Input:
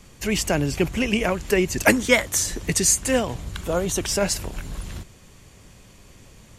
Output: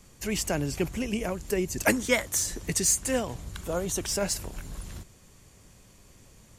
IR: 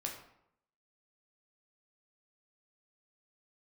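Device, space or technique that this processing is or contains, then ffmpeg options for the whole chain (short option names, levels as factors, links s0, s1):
exciter from parts: -filter_complex "[0:a]asettb=1/sr,asplit=3[s0][s1][s2];[s0]atrim=end=0.974[s3];[s1]atrim=start=0.97:end=1.79,asetpts=PTS-STARTPTS,afade=t=in:d=0.004:c=qsin,afade=t=out:st=0.816:d=0.004:c=qsin,equalizer=f=1800:w=0.46:g=-5[s4];[s2]atrim=start=1.786[s5];[s3][s4]acrossfade=d=0.004:c1=hsin:c2=qsin[s6];[s6][s5]acrossfade=d=0.004:c1=qsin:c2=hsin,asplit=2[s7][s8];[s8]highpass=3200,asoftclip=type=tanh:threshold=0.0891,highpass=f=2900:p=1,volume=0.631[s9];[s7][s9]amix=inputs=2:normalize=0,volume=0.473"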